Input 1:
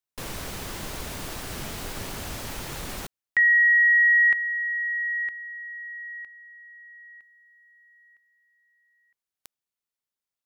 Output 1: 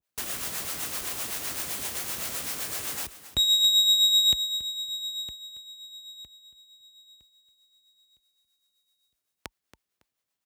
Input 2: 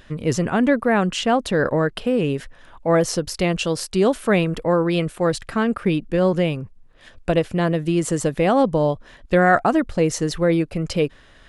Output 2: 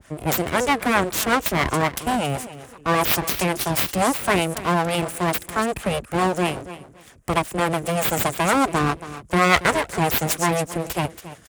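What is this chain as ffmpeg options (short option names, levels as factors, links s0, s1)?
-filter_complex "[0:a]acrossover=split=140[s0][s1];[s0]acompressor=threshold=0.00708:ratio=6:release=55[s2];[s2][s1]amix=inputs=2:normalize=0,aecho=1:1:278|556:0.188|0.0414,aexciter=amount=12.2:drive=7.5:freq=6300,aemphasis=mode=reproduction:type=75kf,aeval=exprs='abs(val(0))':c=same,bandreject=f=900:w=19,acrossover=split=430[s3][s4];[s3]aeval=exprs='val(0)*(1-0.5/2+0.5/2*cos(2*PI*7.8*n/s))':c=same[s5];[s4]aeval=exprs='val(0)*(1-0.5/2-0.5/2*cos(2*PI*7.8*n/s))':c=same[s6];[s5][s6]amix=inputs=2:normalize=0,highpass=f=44:w=0.5412,highpass=f=44:w=1.3066,adynamicequalizer=threshold=0.0158:dfrequency=1800:dqfactor=0.7:tfrequency=1800:tqfactor=0.7:attack=5:release=100:ratio=0.375:range=2:mode=boostabove:tftype=highshelf,volume=1.68"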